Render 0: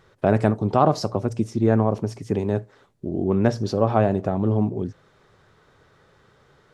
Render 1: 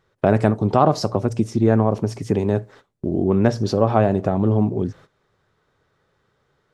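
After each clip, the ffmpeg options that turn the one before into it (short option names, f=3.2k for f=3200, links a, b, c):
-filter_complex "[0:a]agate=range=-16dB:threshold=-47dB:ratio=16:detection=peak,asplit=2[a][b];[b]acompressor=threshold=-26dB:ratio=6,volume=1dB[c];[a][c]amix=inputs=2:normalize=0"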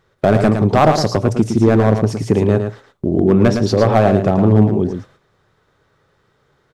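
-af "asoftclip=type=hard:threshold=-10dB,aecho=1:1:111:0.447,volume=5.5dB"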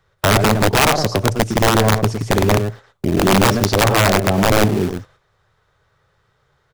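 -filter_complex "[0:a]acrossover=split=160|400|2500[a][b][c][d];[a]aphaser=in_gain=1:out_gain=1:delay=2.1:decay=0.34:speed=0.32:type=triangular[e];[b]acrusher=bits=5:dc=4:mix=0:aa=0.000001[f];[e][f][c][d]amix=inputs=4:normalize=0,aeval=exprs='(mod(1.68*val(0)+1,2)-1)/1.68':c=same,volume=-1.5dB"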